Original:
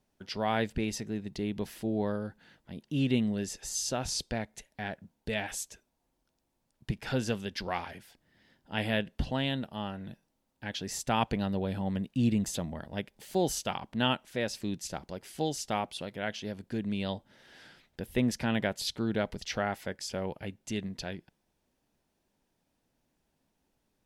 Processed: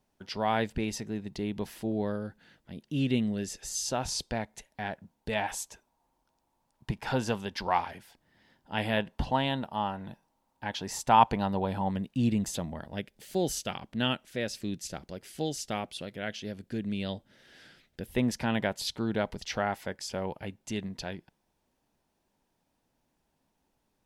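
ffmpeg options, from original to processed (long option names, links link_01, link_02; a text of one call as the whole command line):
ffmpeg -i in.wav -af "asetnsamples=nb_out_samples=441:pad=0,asendcmd='1.92 equalizer g -2;3.85 equalizer g 6;5.32 equalizer g 12;7.8 equalizer g 6;8.97 equalizer g 13;11.91 equalizer g 2.5;12.96 equalizer g -6;18.09 equalizer g 4.5',equalizer=frequency=920:width_type=o:width=0.72:gain=4" out.wav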